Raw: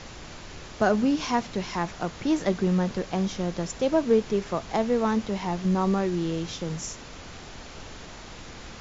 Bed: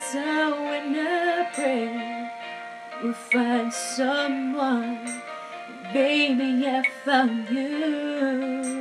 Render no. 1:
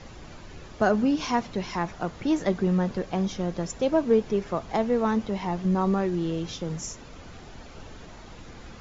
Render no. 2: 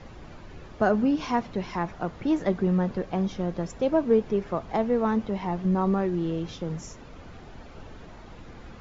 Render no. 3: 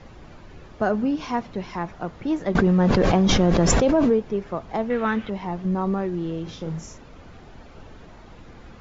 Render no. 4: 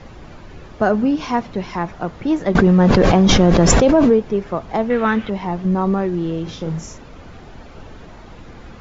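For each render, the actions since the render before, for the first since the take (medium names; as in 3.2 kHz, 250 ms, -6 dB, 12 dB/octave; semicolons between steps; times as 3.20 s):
noise reduction 8 dB, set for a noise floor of -43 dBFS
low-pass 2.4 kHz 6 dB/octave
2.55–4.13 s: level flattener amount 100%; 4.90–5.30 s: high-order bell 2.2 kHz +11 dB; 6.43–6.98 s: doubling 37 ms -5.5 dB
trim +6 dB; peak limiter -1 dBFS, peak gain reduction 1 dB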